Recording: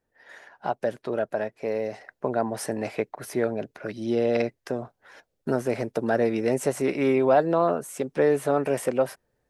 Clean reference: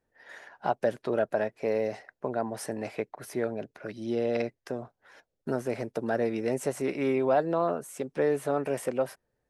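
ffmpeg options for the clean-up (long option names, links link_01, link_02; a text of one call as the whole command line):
ffmpeg -i in.wav -af "asetnsamples=nb_out_samples=441:pad=0,asendcmd='2.01 volume volume -5dB',volume=0dB" out.wav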